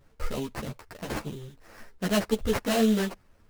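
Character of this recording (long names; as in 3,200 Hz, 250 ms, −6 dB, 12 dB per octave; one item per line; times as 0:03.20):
aliases and images of a low sample rate 3,500 Hz, jitter 20%
a shimmering, thickened sound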